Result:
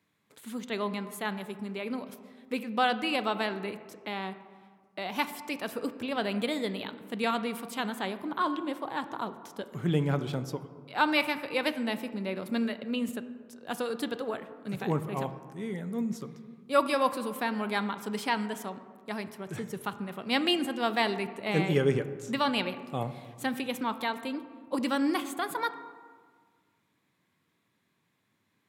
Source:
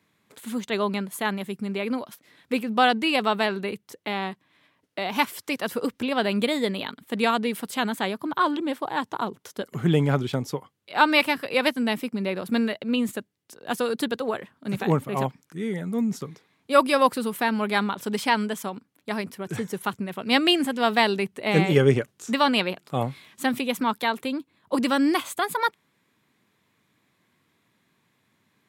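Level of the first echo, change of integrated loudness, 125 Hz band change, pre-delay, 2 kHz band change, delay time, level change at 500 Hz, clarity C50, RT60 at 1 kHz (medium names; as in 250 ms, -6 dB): no echo, -6.5 dB, -6.5 dB, 4 ms, -6.5 dB, no echo, -6.5 dB, 12.5 dB, 1.7 s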